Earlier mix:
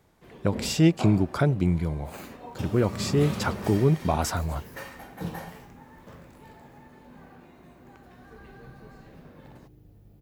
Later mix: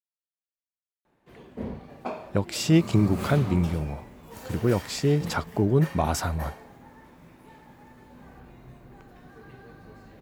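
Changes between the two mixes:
speech: entry +1.90 s; first sound: entry +1.05 s

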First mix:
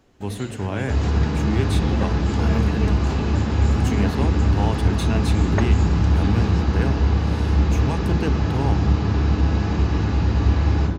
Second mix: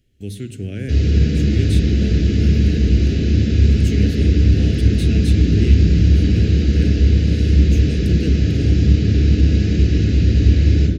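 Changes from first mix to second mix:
first sound -11.5 dB; second sound +5.5 dB; master: add Butterworth band-stop 970 Hz, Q 0.58

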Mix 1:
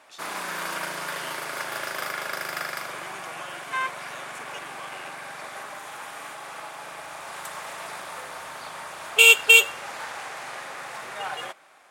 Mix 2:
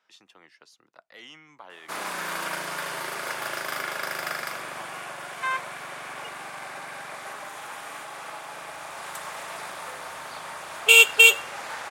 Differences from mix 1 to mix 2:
speech: add high shelf 4300 Hz -11 dB; background: entry +1.70 s

